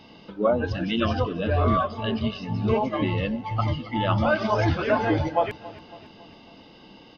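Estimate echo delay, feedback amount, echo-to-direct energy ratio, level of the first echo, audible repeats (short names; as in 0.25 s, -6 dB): 0.277 s, 54%, -17.5 dB, -19.0 dB, 3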